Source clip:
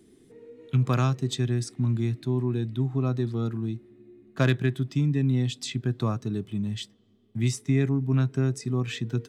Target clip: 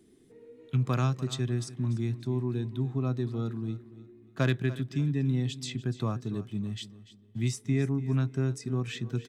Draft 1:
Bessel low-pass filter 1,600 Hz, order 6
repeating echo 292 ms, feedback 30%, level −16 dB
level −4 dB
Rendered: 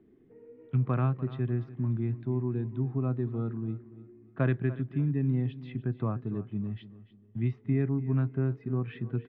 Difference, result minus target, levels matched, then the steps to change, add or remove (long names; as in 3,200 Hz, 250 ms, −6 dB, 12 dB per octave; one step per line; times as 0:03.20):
2,000 Hz band −4.0 dB
remove: Bessel low-pass filter 1,600 Hz, order 6